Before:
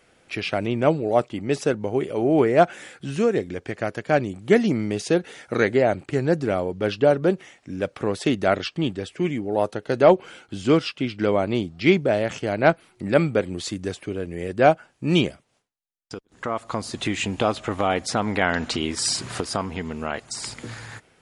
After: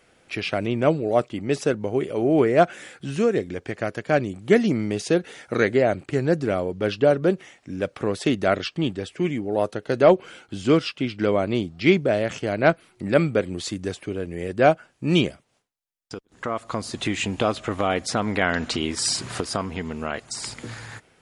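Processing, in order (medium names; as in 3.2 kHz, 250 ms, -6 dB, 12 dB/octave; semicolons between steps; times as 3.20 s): dynamic bell 850 Hz, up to -5 dB, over -40 dBFS, Q 4.9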